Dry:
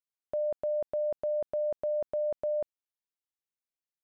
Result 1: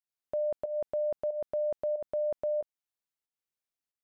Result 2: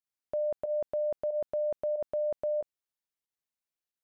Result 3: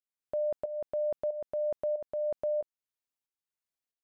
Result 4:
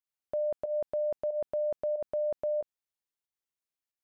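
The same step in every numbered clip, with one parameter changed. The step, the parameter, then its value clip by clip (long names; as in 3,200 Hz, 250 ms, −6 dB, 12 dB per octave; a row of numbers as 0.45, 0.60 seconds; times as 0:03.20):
fake sidechain pumping, release: 243, 87, 528, 130 milliseconds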